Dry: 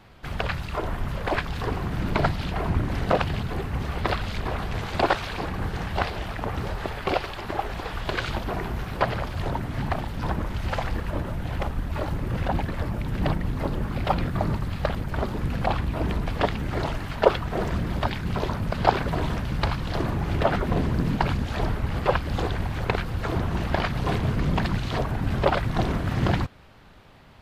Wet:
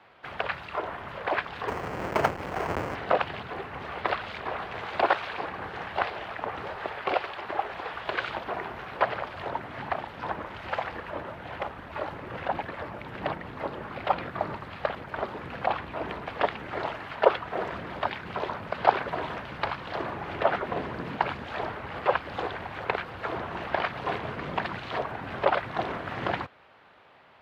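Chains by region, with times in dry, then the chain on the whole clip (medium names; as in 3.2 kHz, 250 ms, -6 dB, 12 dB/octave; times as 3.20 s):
1.68–2.95 s: square wave that keeps the level + distance through air 230 m + careless resampling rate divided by 6×, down filtered, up hold
whole clip: high-pass 87 Hz 12 dB/octave; three-band isolator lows -15 dB, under 400 Hz, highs -18 dB, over 3.5 kHz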